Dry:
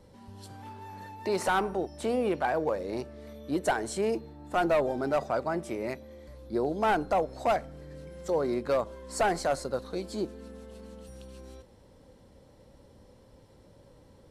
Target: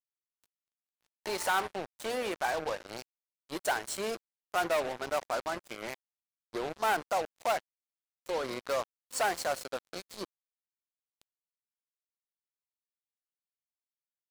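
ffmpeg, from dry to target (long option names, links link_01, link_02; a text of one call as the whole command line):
ffmpeg -i in.wav -af "highpass=frequency=1100:poles=1,acrusher=bits=5:mix=0:aa=0.5,volume=1.5dB" out.wav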